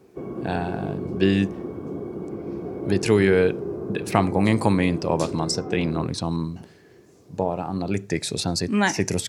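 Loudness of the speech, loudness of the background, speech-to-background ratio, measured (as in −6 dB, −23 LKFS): −24.0 LKFS, −32.5 LKFS, 8.5 dB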